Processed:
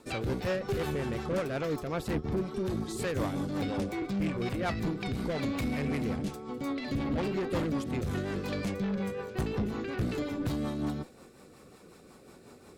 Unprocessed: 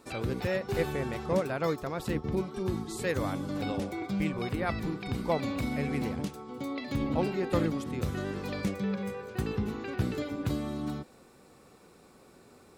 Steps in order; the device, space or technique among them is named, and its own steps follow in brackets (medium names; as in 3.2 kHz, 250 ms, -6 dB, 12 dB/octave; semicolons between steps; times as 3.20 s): overdriven rotary cabinet (valve stage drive 31 dB, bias 0.35; rotary cabinet horn 5.5 Hz); trim +6 dB